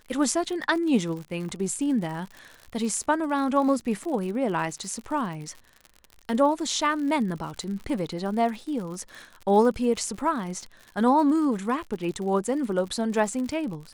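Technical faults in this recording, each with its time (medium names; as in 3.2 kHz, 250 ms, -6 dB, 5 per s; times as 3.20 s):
crackle 76 per s -34 dBFS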